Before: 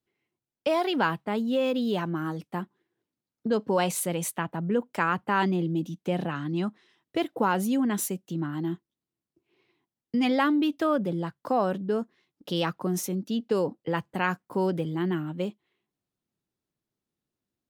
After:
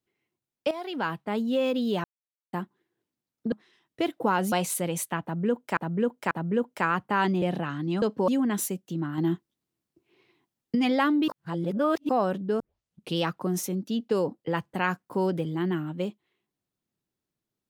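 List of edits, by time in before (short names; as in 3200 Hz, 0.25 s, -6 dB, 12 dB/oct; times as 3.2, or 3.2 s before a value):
0.71–1.38 fade in, from -14 dB
2.04–2.53 mute
3.52–3.78 swap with 6.68–7.68
4.49–5.03 loop, 3 plays
5.6–6.08 cut
8.58–10.15 gain +4.5 dB
10.68–11.49 reverse
12 tape start 0.56 s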